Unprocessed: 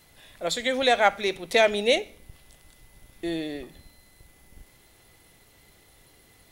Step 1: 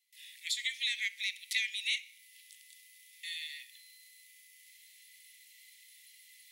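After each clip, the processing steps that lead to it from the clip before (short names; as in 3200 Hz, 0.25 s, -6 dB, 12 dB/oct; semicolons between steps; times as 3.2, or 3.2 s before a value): gate with hold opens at -47 dBFS; steep high-pass 1900 Hz 96 dB/oct; compressor 2:1, threshold -37 dBFS, peak gain reduction 9 dB; gain +1.5 dB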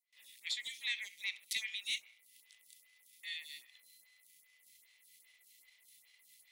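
sample leveller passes 1; photocell phaser 2.5 Hz; gain -3.5 dB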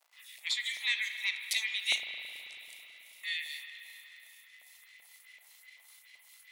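crackle 120/s -58 dBFS; LFO high-pass saw up 2.6 Hz 660–2100 Hz; spring tank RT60 3.7 s, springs 36/54 ms, chirp 40 ms, DRR 5.5 dB; gain +5 dB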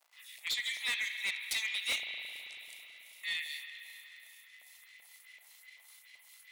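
hard clip -29 dBFS, distortion -10 dB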